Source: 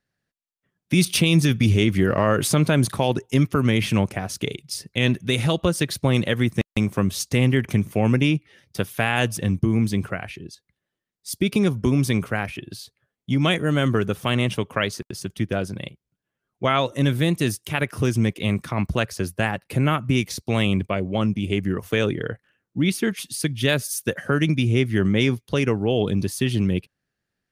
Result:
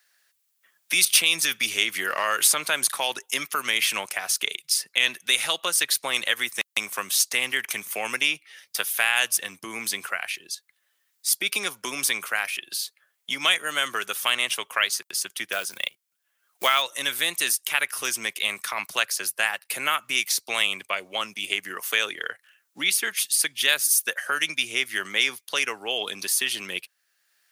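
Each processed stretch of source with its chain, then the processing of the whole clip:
15.52–16.82 s: transient shaper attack +6 dB, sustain -2 dB + short-mantissa float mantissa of 4-bit
whole clip: high-pass 1.2 kHz 12 dB/octave; treble shelf 7 kHz +10.5 dB; three bands compressed up and down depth 40%; trim +3.5 dB

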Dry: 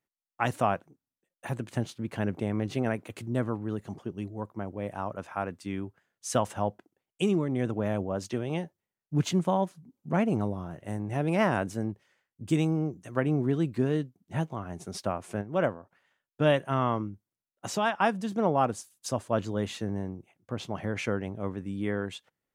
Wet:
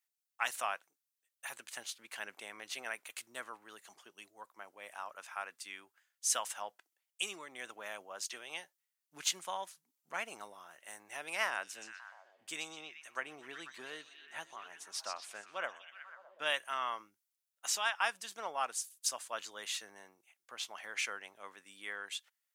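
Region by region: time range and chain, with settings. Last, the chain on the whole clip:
11.50–16.46 s: treble shelf 5.6 kHz -8.5 dB + repeats whose band climbs or falls 123 ms, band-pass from 5.5 kHz, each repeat -0.7 oct, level -3.5 dB
whole clip: high-pass 1.4 kHz 12 dB/octave; treble shelf 4.2 kHz +8.5 dB; trim -1.5 dB

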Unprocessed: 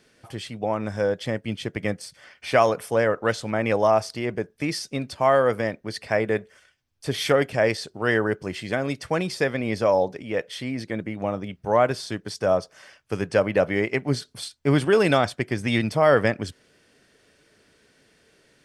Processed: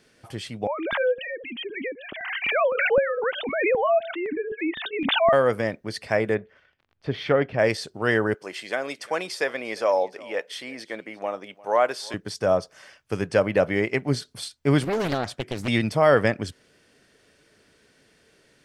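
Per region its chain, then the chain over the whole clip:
0.67–5.33 s: formants replaced by sine waves + LFO notch saw up 3.9 Hz 220–1900 Hz + swell ahead of each attack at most 37 dB/s
6.34–7.58 s: crackle 42 per s -41 dBFS + distance through air 310 m
8.34–12.14 s: high-pass 470 Hz + delay 351 ms -21.5 dB
14.83–15.68 s: compression 2.5:1, threshold -24 dBFS + loudspeaker Doppler distortion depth 0.86 ms
whole clip: none

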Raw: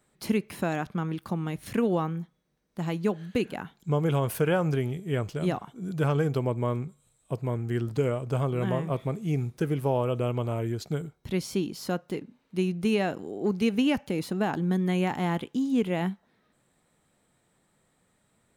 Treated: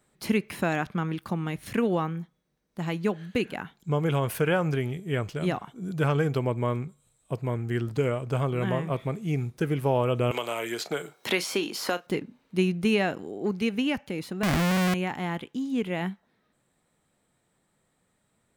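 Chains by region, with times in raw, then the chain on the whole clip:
10.31–12.07 s: high-pass 490 Hz + doubling 34 ms -13.5 dB + three bands compressed up and down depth 100%
14.43–14.94 s: tilt EQ -3 dB/octave + Schmitt trigger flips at -33 dBFS
whole clip: dynamic bell 2.1 kHz, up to +5 dB, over -48 dBFS, Q 0.91; gain riding 2 s; trim -1 dB

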